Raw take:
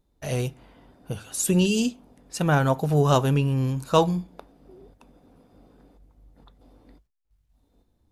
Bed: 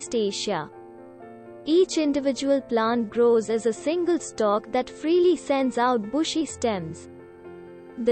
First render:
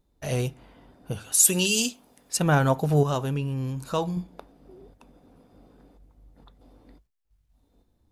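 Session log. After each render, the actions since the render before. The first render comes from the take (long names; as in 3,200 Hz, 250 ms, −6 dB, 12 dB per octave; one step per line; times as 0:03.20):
0:01.32–0:02.37: spectral tilt +3 dB per octave
0:03.03–0:04.17: downward compressor 1.5 to 1, threshold −35 dBFS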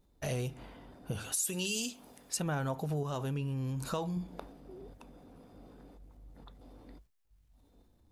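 downward compressor 6 to 1, threshold −32 dBFS, peak gain reduction 17 dB
transient designer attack −1 dB, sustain +4 dB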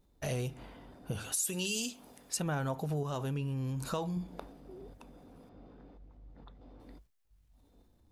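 0:05.49–0:06.80: high-frequency loss of the air 160 metres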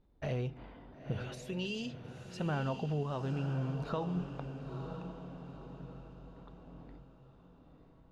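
high-frequency loss of the air 270 metres
feedback delay with all-pass diffusion 965 ms, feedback 43%, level −8 dB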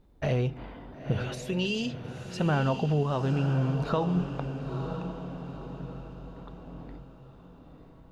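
level +8.5 dB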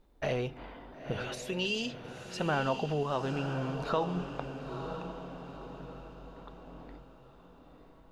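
parametric band 110 Hz −11 dB 2.4 octaves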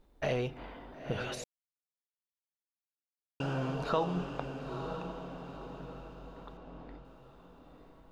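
0:01.44–0:03.40: silence
0:06.57–0:07.05: high-frequency loss of the air 82 metres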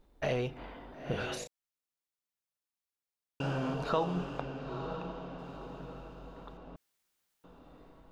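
0:00.95–0:03.74: double-tracking delay 35 ms −6 dB
0:04.41–0:05.39: low-pass filter 5,500 Hz
0:06.76–0:07.44: fill with room tone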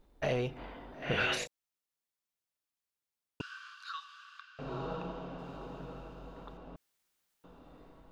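0:01.02–0:01.46: parametric band 2,200 Hz +12.5 dB 1.7 octaves
0:03.41–0:04.59: Chebyshev high-pass with heavy ripple 1,100 Hz, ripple 9 dB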